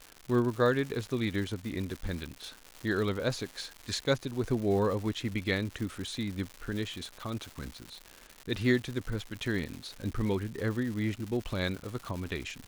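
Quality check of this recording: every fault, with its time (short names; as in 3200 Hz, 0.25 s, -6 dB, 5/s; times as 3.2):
crackle 260/s -36 dBFS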